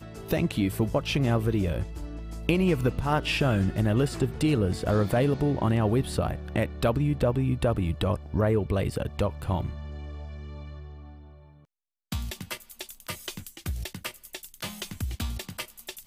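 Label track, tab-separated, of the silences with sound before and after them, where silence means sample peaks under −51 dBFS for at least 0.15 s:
11.650000	12.120000	silence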